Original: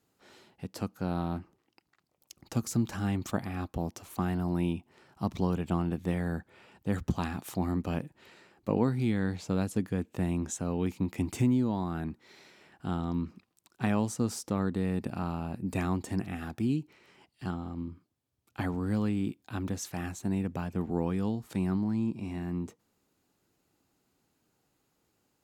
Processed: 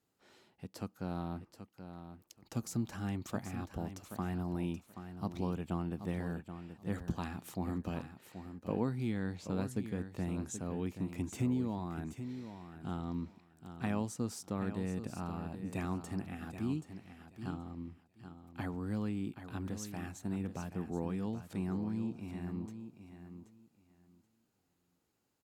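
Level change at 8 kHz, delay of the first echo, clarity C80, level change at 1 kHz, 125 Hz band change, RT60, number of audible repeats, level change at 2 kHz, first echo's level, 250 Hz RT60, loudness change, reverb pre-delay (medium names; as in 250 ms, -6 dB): -6.5 dB, 779 ms, no reverb, -6.5 dB, -6.5 dB, no reverb, 2, -6.5 dB, -10.0 dB, no reverb, -7.0 dB, no reverb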